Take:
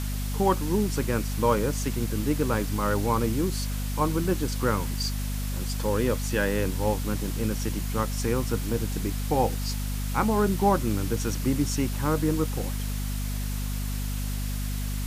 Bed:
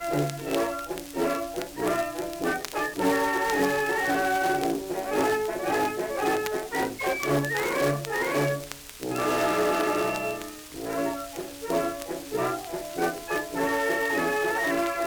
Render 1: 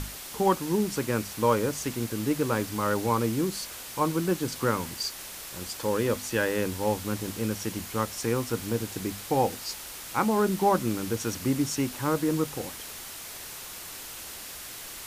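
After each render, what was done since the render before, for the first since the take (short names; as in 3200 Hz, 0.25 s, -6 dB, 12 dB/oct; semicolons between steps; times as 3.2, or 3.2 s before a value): notches 50/100/150/200/250 Hz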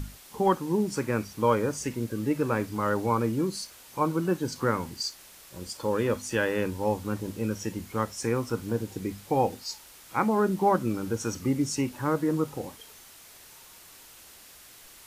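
noise print and reduce 10 dB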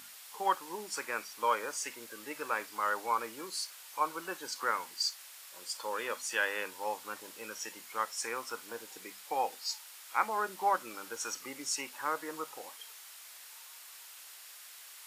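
HPF 950 Hz 12 dB/oct; notch 6100 Hz, Q 28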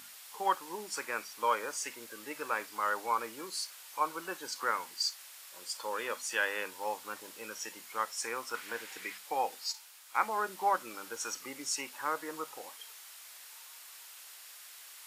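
6.75–7.41 short-mantissa float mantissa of 4-bit; 8.54–9.18 bell 2000 Hz +11 dB 1.4 oct; 9.72–10.15 detuned doubles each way 59 cents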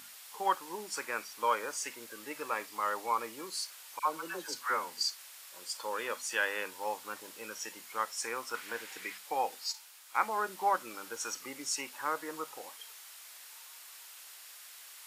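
2.4–3.47 notch 1500 Hz, Q 8.6; 3.99–5.18 dispersion lows, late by 83 ms, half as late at 940 Hz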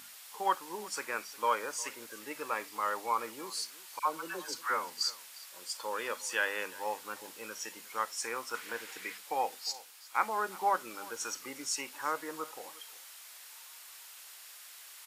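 echo 0.356 s -20.5 dB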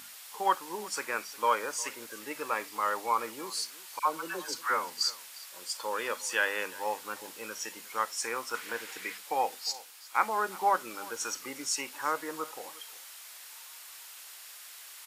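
gain +3 dB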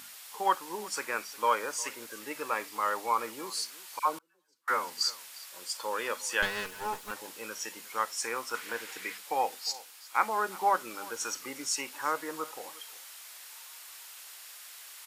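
4.18–4.68 flipped gate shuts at -37 dBFS, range -35 dB; 6.42–7.11 minimum comb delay 4.7 ms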